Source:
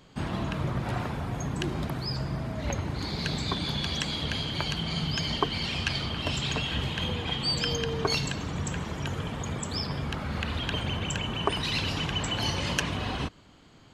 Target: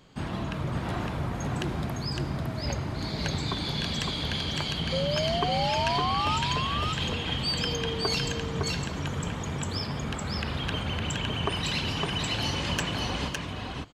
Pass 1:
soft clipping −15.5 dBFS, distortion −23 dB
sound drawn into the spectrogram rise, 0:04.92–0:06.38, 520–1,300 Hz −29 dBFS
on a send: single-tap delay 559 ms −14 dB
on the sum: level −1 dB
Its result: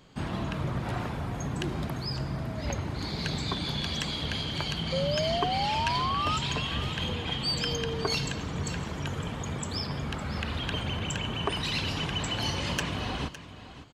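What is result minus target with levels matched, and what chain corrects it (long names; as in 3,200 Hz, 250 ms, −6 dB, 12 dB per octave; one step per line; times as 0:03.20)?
echo-to-direct −11 dB
soft clipping −15.5 dBFS, distortion −23 dB
sound drawn into the spectrogram rise, 0:04.92–0:06.38, 520–1,300 Hz −29 dBFS
on a send: single-tap delay 559 ms −3 dB
on the sum: level −1 dB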